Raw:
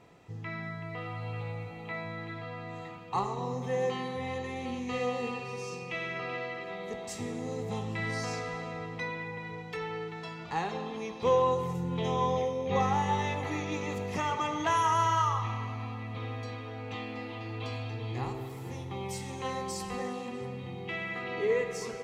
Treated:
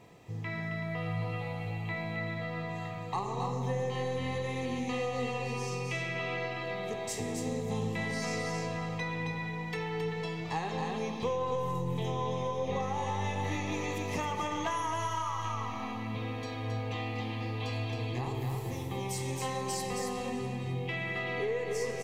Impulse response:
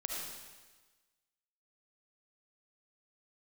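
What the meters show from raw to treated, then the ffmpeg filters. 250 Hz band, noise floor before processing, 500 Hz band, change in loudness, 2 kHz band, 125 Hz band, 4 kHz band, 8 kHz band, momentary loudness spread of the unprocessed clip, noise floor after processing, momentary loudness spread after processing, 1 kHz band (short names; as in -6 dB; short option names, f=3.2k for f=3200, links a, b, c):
+0.5 dB, -43 dBFS, -2.0 dB, -1.0 dB, 0.0 dB, +2.0 dB, +0.5 dB, +2.5 dB, 12 LU, -38 dBFS, 4 LU, -3.5 dB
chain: -filter_complex "[0:a]highshelf=f=8.5k:g=7.5,aecho=1:1:269:0.596,aeval=exprs='0.2*(cos(1*acos(clip(val(0)/0.2,-1,1)))-cos(1*PI/2))+0.00794*(cos(4*acos(clip(val(0)/0.2,-1,1)))-cos(4*PI/2))':c=same,asplit=2[a][b];[b]equalizer=f=130:w=1.5:g=12.5[c];[1:a]atrim=start_sample=2205[d];[c][d]afir=irnorm=-1:irlink=0,volume=-16dB[e];[a][e]amix=inputs=2:normalize=0,acompressor=threshold=-30dB:ratio=6,flanger=delay=9.2:depth=9.4:regen=89:speed=0.45:shape=triangular,bandreject=f=1.4k:w=5.5,volume=5dB"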